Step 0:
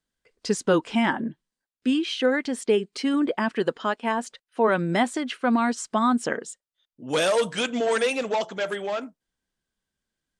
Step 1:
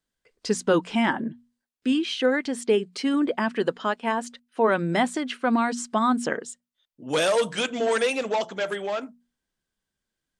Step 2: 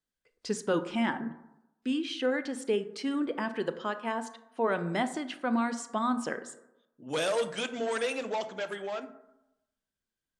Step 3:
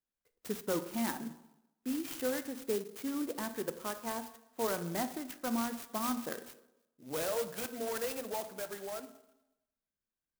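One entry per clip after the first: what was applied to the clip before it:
notches 60/120/180/240 Hz
reverb RT60 0.90 s, pre-delay 23 ms, DRR 11.5 dB; gain -7.5 dB
clock jitter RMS 0.088 ms; gain -5.5 dB

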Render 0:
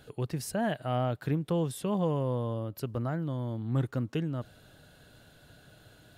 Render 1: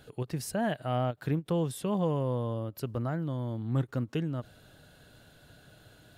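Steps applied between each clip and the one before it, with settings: ending taper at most 510 dB/s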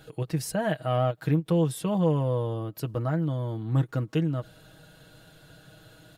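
comb 6.3 ms, depth 59%; gain +2.5 dB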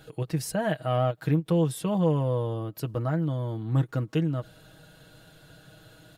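nothing audible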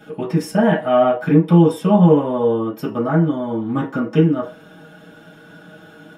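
reverb RT60 0.30 s, pre-delay 3 ms, DRR -6.5 dB; gain -3.5 dB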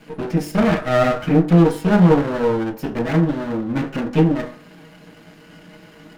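minimum comb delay 0.42 ms; de-hum 49.65 Hz, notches 39

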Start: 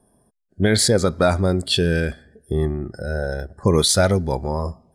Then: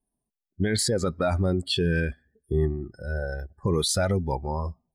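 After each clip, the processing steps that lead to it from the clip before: per-bin expansion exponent 1.5; limiter -16 dBFS, peak gain reduction 8.5 dB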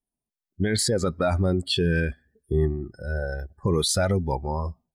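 AGC gain up to 9.5 dB; gain -8 dB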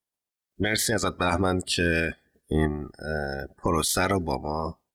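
spectral limiter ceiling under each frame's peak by 21 dB; added harmonics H 3 -27 dB, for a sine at -9.5 dBFS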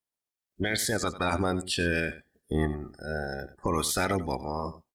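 echo 92 ms -15.5 dB; gain -3.5 dB

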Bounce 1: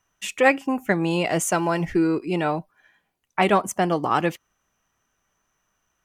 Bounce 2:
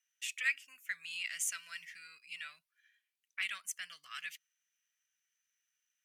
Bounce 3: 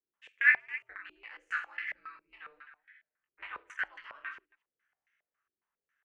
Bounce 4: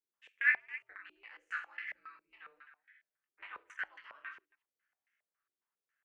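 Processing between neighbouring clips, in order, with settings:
inverse Chebyshev high-pass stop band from 920 Hz, stop band 40 dB; gain -8.5 dB
ring modulator 140 Hz; reverse bouncing-ball echo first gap 20 ms, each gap 1.5×, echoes 5; stepped low-pass 7.3 Hz 380–2000 Hz; gain +5.5 dB
low shelf 74 Hz -12 dB; gain -5 dB

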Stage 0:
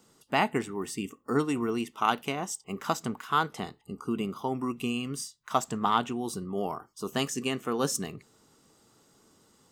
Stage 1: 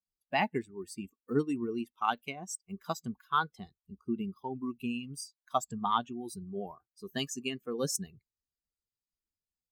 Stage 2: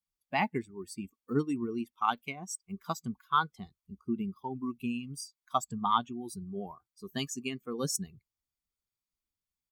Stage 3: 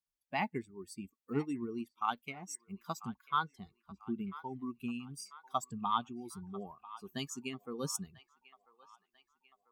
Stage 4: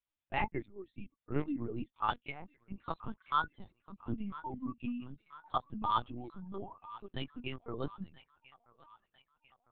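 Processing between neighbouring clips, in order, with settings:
per-bin expansion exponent 2
comb 0.9 ms, depth 34%
band-limited delay 0.993 s, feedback 49%, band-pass 1500 Hz, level -16 dB; gain -5 dB
LPC vocoder at 8 kHz pitch kept; gain +1 dB

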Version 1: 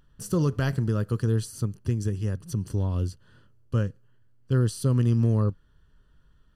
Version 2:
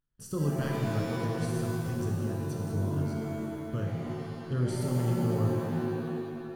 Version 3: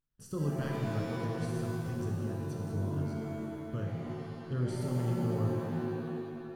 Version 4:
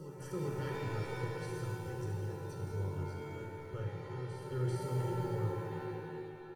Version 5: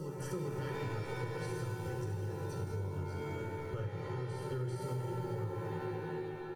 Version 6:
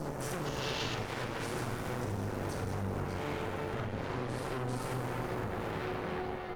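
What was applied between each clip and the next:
gate -53 dBFS, range -17 dB; shimmer reverb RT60 2.2 s, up +7 st, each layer -2 dB, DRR 0 dB; gain -9 dB
high shelf 6500 Hz -5.5 dB; gain -3.5 dB
comb 2.2 ms, depth 92%; reverse echo 0.394 s -9 dB; on a send at -3 dB: reverb RT60 0.55 s, pre-delay 3 ms; on the sum: gain -6 dB
compressor, threshold -41 dBFS, peak gain reduction 11 dB; gain +6 dB
added harmonics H 8 -8 dB, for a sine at -26 dBFS; spectral gain 0.46–0.95, 2600–7100 Hz +9 dB; flutter echo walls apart 7 m, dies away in 0.23 s; gain -2 dB

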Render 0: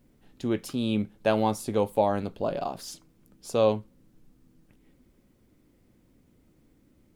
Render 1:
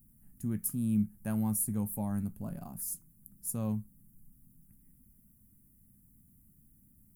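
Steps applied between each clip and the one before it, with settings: EQ curve 210 Hz 0 dB, 330 Hz -17 dB, 510 Hz -24 dB, 760 Hz -19 dB, 1800 Hz -14 dB, 3700 Hz -29 dB, 11000 Hz +14 dB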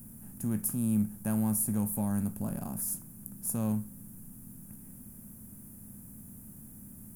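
per-bin compression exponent 0.6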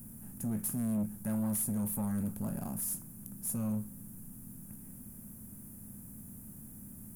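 soft clip -28 dBFS, distortion -12 dB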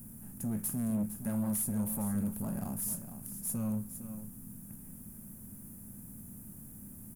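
echo 0.459 s -10.5 dB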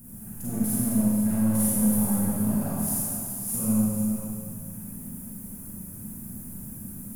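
reverb RT60 2.2 s, pre-delay 33 ms, DRR -9 dB

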